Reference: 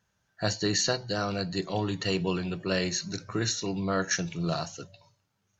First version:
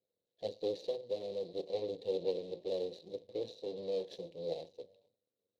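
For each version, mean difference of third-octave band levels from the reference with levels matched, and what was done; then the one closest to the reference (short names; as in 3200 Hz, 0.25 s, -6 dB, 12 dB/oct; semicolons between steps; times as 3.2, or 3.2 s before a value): 10.0 dB: median filter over 41 samples; half-wave rectifier; double band-pass 1400 Hz, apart 3 oct; gain +9.5 dB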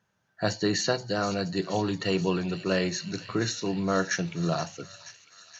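2.5 dB: HPF 120 Hz 12 dB/oct; high shelf 3500 Hz -8.5 dB; on a send: thin delay 0.476 s, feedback 70%, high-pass 2500 Hz, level -11 dB; on the sum: gain +3 dB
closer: second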